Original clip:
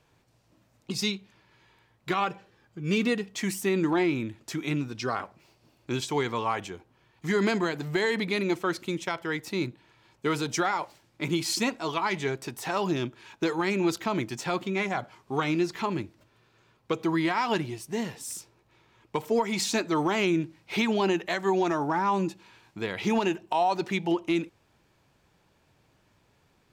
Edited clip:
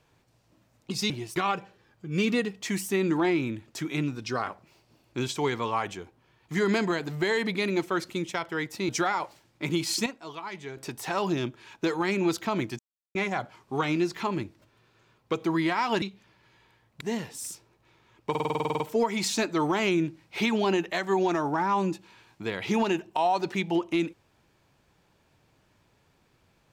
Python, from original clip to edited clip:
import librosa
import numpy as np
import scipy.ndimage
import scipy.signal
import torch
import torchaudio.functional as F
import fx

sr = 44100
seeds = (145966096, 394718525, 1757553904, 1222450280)

y = fx.edit(x, sr, fx.swap(start_s=1.1, length_s=0.99, other_s=17.61, other_length_s=0.26),
    fx.cut(start_s=9.62, length_s=0.86),
    fx.clip_gain(start_s=11.65, length_s=0.71, db=-10.0),
    fx.silence(start_s=14.38, length_s=0.36),
    fx.stutter(start_s=19.16, slice_s=0.05, count=11), tone=tone)